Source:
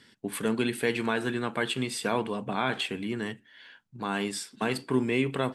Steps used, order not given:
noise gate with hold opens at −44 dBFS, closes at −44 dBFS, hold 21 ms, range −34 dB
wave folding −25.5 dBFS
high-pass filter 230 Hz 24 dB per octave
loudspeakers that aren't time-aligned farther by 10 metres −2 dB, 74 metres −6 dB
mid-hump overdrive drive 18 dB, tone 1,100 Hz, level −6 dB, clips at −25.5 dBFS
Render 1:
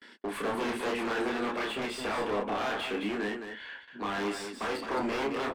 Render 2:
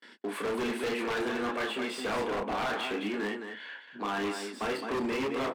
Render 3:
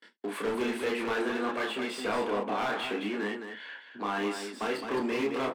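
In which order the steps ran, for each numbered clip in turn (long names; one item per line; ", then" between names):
wave folding, then high-pass filter, then mid-hump overdrive, then loudspeakers that aren't time-aligned, then noise gate with hold
mid-hump overdrive, then loudspeakers that aren't time-aligned, then noise gate with hold, then high-pass filter, then wave folding
mid-hump overdrive, then noise gate with hold, then high-pass filter, then wave folding, then loudspeakers that aren't time-aligned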